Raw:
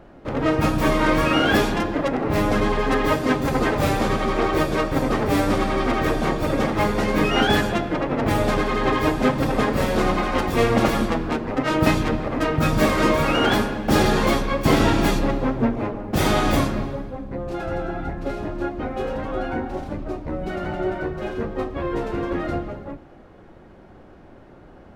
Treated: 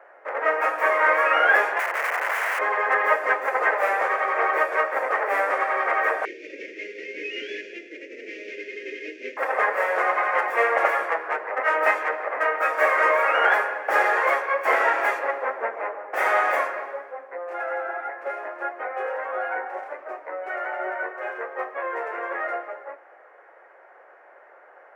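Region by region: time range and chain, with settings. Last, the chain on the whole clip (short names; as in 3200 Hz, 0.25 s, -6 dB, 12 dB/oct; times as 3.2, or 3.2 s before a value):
1.79–2.59 notches 50/100/150/200/250 Hz + wrapped overs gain 20.5 dB
6.25–9.37 CVSD 32 kbps + elliptic band-stop 370–2500 Hz, stop band 70 dB + low shelf 360 Hz +8.5 dB
whole clip: steep high-pass 490 Hz 36 dB/oct; resonant high shelf 2700 Hz -12 dB, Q 3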